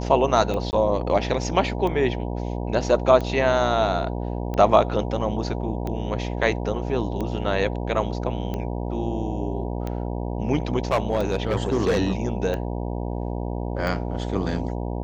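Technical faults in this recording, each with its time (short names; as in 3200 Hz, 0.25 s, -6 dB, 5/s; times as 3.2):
buzz 60 Hz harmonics 16 -28 dBFS
tick 45 rpm -17 dBFS
0.71–0.73 gap 19 ms
10.91–11.99 clipped -16 dBFS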